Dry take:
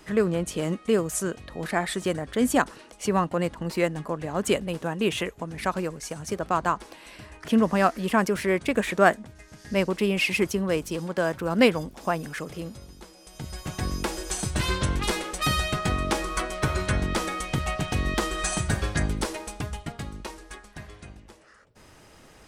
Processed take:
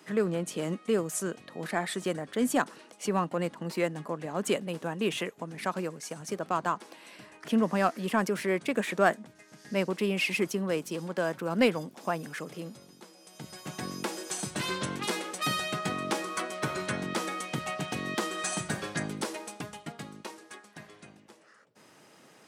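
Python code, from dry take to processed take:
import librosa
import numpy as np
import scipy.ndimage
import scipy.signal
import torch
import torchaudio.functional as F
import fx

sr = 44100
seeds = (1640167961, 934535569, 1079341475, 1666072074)

p1 = scipy.signal.sosfilt(scipy.signal.butter(4, 150.0, 'highpass', fs=sr, output='sos'), x)
p2 = 10.0 ** (-18.5 / 20.0) * np.tanh(p1 / 10.0 ** (-18.5 / 20.0))
p3 = p1 + F.gain(torch.from_numpy(p2), -9.0).numpy()
y = F.gain(torch.from_numpy(p3), -6.5).numpy()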